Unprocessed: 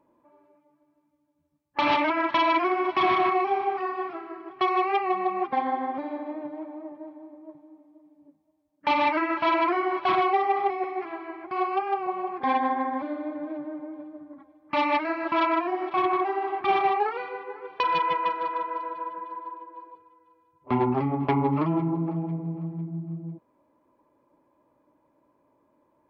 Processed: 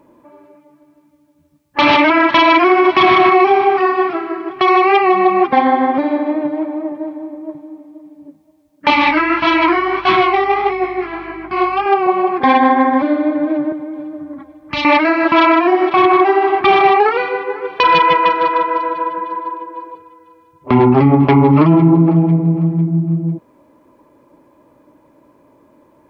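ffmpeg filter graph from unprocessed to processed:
-filter_complex "[0:a]asettb=1/sr,asplit=3[a][b][c];[a]atrim=end=8.904[d];[b]atrim=start=8.9:end=11.86,asetpts=PTS-STARTPTS,afade=t=in:d=0.004:c=qsin,afade=t=out:st=2.956:d=0.004:c=qsin,flanger=delay=15.5:depth=7.5:speed=1.6,equalizer=f=530:t=o:w=0.71:g=-10,aeval=exprs='val(0)+0.000891*(sin(2*PI*50*n/s)+sin(2*PI*2*50*n/s)/2+sin(2*PI*3*50*n/s)/3+sin(2*PI*4*50*n/s)/4+sin(2*PI*5*50*n/s)/5)':c=same[e];[c]atrim=start=11.856[f];[d][e]acrossfade=d=0.004:c1=hsin:c2=qsin[g];[g][f]acrossfade=d=0.004:c1=qsin:c2=hsin,asettb=1/sr,asplit=3[h][i][j];[h]atrim=end=13.724[k];[i]atrim=start=13.72:end=14.85,asetpts=PTS-STARTPTS,afade=t=in:d=0.004:c=qsin,afade=t=out:st=1.126:d=0.004:c=qsin,asubboost=boost=4.5:cutoff=180,acrossover=split=160|3000[l][m][n];[m]acompressor=threshold=-42dB:ratio=3:attack=3.2:release=140:knee=2.83:detection=peak[o];[l][o][n]amix=inputs=3:normalize=0[p];[j]atrim=start=14.846[q];[k][p]acrossfade=d=0.004:c1=hsin:c2=qsin[r];[r][q]acrossfade=d=0.004:c1=qsin:c2=hsin,equalizer=f=890:t=o:w=1.2:g=-4.5,alimiter=level_in=19.5dB:limit=-1dB:release=50:level=0:latency=1,volume=-1.5dB"

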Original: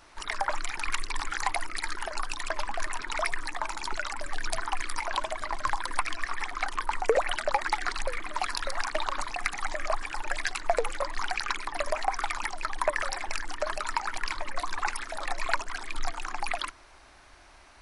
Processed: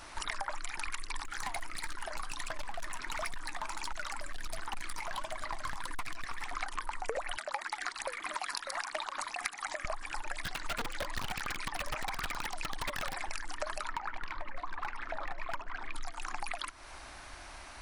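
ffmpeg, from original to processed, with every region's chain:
-filter_complex "[0:a]asettb=1/sr,asplit=3[a][b][c];[a]atrim=end=1.254[d];[b]atrim=start=1.25:end=6.51,asetpts=PTS-STARTPTS,afade=t=in:d=0.004:c=qsin,afade=t=out:st=5.256:d=0.004:c=qsin,flanger=delay=3.3:depth=5.8:regen=83:speed=1.5:shape=sinusoidal,asoftclip=type=hard:threshold=-29.5dB[e];[c]atrim=start=6.506[f];[d][e]acrossfade=d=0.004:c1=hsin:c2=qsin[g];[g][f]acrossfade=d=0.004:c1=qsin:c2=hsin,asettb=1/sr,asplit=3[h][i][j];[h]atrim=end=7.374[k];[i]atrim=start=7.37:end=9.85,asetpts=PTS-STARTPTS,afade=t=in:d=0.004:c=qsin,afade=t=out:st=2.476:d=0.004:c=qsin,highpass=f=410:p=1,tremolo=f=4.3:d=0.47[l];[j]atrim=start=9.846[m];[k][l]acrossfade=d=0.004:c1=hsin:c2=qsin[n];[n][m]acrossfade=d=0.004:c1=qsin:c2=hsin,asettb=1/sr,asplit=3[o][p][q];[o]atrim=end=10.434[r];[p]atrim=start=10.43:end=13.16,asetpts=PTS-STARTPTS,afade=t=in:d=0.004:c=qsin,afade=t=out:st=2.726:d=0.004:c=qsin,equalizer=f=5.1k:w=0.64:g=4.5,aeval=exprs='(mod(10.6*val(0)+1,2)-1)/10.6':c=same,acrossover=split=4300[s][t];[t]acompressor=threshold=-39dB:ratio=4:attack=1:release=60[u];[s][u]amix=inputs=2:normalize=0[v];[q]atrim=start=13.156[w];[r][v]acrossfade=d=0.004:c1=hsin:c2=qsin[x];[x][w]acrossfade=d=0.004:c1=qsin:c2=hsin,asettb=1/sr,asplit=3[y][z][aa];[y]atrim=end=13.874[ab];[z]atrim=start=13.87:end=15.94,asetpts=PTS-STARTPTS,afade=t=in:d=0.004:c=qsin,afade=t=out:st=2.066:d=0.004:c=qsin,lowpass=2.3k,volume=21.5dB,asoftclip=hard,volume=-21.5dB[ac];[aa]atrim=start=15.936[ad];[ab][ac]acrossfade=d=0.004:c1=hsin:c2=qsin[ae];[ae][ad]acrossfade=d=0.004:c1=qsin:c2=hsin,equalizer=f=410:w=2.5:g=-4,acompressor=threshold=-40dB:ratio=6,equalizer=f=9.7k:w=1.3:g=3.5,volume=6dB"

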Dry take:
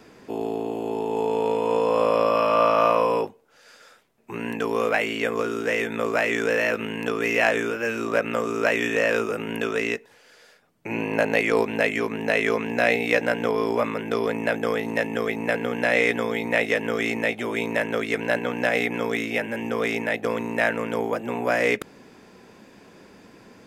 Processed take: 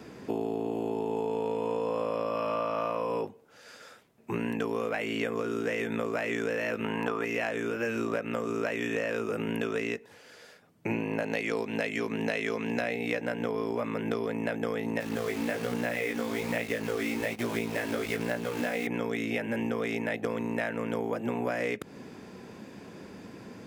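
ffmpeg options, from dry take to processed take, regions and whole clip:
-filter_complex "[0:a]asettb=1/sr,asplit=3[a][b][c];[a]atrim=end=6.844[d];[b]atrim=start=6.84:end=7.25,asetpts=PTS-STARTPTS,afade=t=in:d=0.004:c=qsin,afade=t=out:st=0.406:d=0.004:c=qsin,equalizer=f=990:t=o:w=1.3:g=13,bandreject=f=1.1k:w=25[e];[c]atrim=start=7.246[f];[d][e]acrossfade=d=0.004:c1=hsin:c2=qsin[g];[g][f]acrossfade=d=0.004:c1=qsin:c2=hsin,asettb=1/sr,asplit=3[h][i][j];[h]atrim=end=11.234[k];[i]atrim=start=11.23:end=12.81,asetpts=PTS-STARTPTS,afade=t=in:d=0.004:c=qsin,afade=t=out:st=1.576:d=0.004:c=qsin,highpass=93,equalizer=f=4.9k:w=0.68:g=6[l];[j]atrim=start=12.806[m];[k][l]acrossfade=d=0.004:c1=hsin:c2=qsin[n];[n][m]acrossfade=d=0.004:c1=qsin:c2=hsin,asettb=1/sr,asplit=3[o][p][q];[o]atrim=end=15.004[r];[p]atrim=start=15:end=18.87,asetpts=PTS-STARTPTS,afade=t=in:d=0.004:c=qsin,afade=t=out:st=3.866:d=0.004:c=qsin,acrusher=bits=6:dc=4:mix=0:aa=0.000001,flanger=delay=17:depth=4.3:speed=1.2[s];[q]atrim=start=18.866[t];[r][s]acrossfade=d=0.004:c1=hsin:c2=qsin[u];[u][t]acrossfade=d=0.004:c1=qsin:c2=hsin,highpass=70,lowshelf=f=330:g=7.5,acompressor=threshold=-27dB:ratio=10"

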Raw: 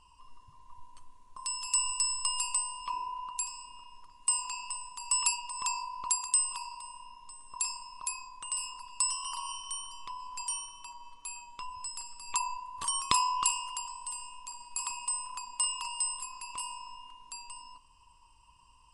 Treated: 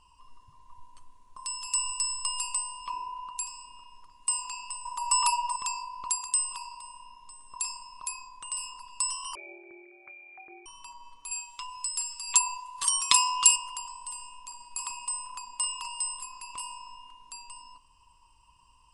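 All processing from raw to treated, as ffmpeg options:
-filter_complex "[0:a]asettb=1/sr,asplit=3[a][b][c];[a]atrim=end=4.854[d];[b]atrim=start=4.85:end=5.56,asetpts=PTS-STARTPTS,afade=t=in:d=0.004:c=qsin,afade=t=out:st=0.706:d=0.004:c=qsin,equalizer=f=1k:w=1.1:g=9.5,aecho=1:1:3.3:0.8,atrim=end_sample=31311[e];[c]atrim=start=5.556[f];[d][e]acrossfade=d=0.004:c1=hsin:c2=qsin[g];[g][f]acrossfade=d=0.004:c1=qsin:c2=hsin,asettb=1/sr,asplit=3[h][i][j];[h]atrim=end=9.354[k];[i]atrim=start=9.35:end=10.66,asetpts=PTS-STARTPTS,afade=t=in:d=0.004:c=qsin,afade=t=out:st=1.306:d=0.004:c=qsin,highpass=f=1.2k:w=0.5412,highpass=f=1.2k:w=1.3066,lowpass=f=2.9k:t=q:w=0.5098,lowpass=f=2.9k:t=q:w=0.6013,lowpass=f=2.9k:t=q:w=0.9,lowpass=f=2.9k:t=q:w=2.563,afreqshift=-3400[l];[j]atrim=start=10.656[m];[k][l]acrossfade=d=0.004:c1=hsin:c2=qsin[n];[n][m]acrossfade=d=0.004:c1=qsin:c2=hsin,asettb=1/sr,asplit=3[o][p][q];[o]atrim=end=11.314[r];[p]atrim=start=11.31:end=13.56,asetpts=PTS-STARTPTS,afade=t=in:d=0.004:c=qsin,afade=t=out:st=2.246:d=0.004:c=qsin,tiltshelf=f=1.3k:g=-9.5,aecho=1:1:7.1:0.54,atrim=end_sample=99225[s];[q]atrim=start=13.556[t];[r][s]acrossfade=d=0.004:c1=hsin:c2=qsin[u];[u][t]acrossfade=d=0.004:c1=qsin:c2=hsin"

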